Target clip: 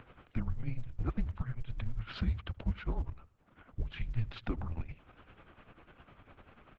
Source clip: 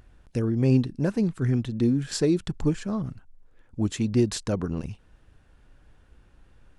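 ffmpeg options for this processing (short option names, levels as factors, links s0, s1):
-filter_complex "[0:a]asplit=2[s0][s1];[s1]alimiter=limit=0.119:level=0:latency=1:release=16,volume=1.12[s2];[s0][s2]amix=inputs=2:normalize=0,tremolo=f=10:d=0.75,asplit=2[s3][s4];[s4]adelay=75,lowpass=f=1800:p=1,volume=0.0708,asplit=2[s5][s6];[s6]adelay=75,lowpass=f=1800:p=1,volume=0.45,asplit=2[s7][s8];[s8]adelay=75,lowpass=f=1800:p=1,volume=0.45[s9];[s5][s7][s9]amix=inputs=3:normalize=0[s10];[s3][s10]amix=inputs=2:normalize=0,acompressor=threshold=0.0141:ratio=4,highpass=f=170:t=q:w=0.5412,highpass=f=170:t=q:w=1.307,lowpass=f=3400:t=q:w=0.5176,lowpass=f=3400:t=q:w=0.7071,lowpass=f=3400:t=q:w=1.932,afreqshift=-250,acontrast=58" -ar 48000 -c:a libopus -b:a 10k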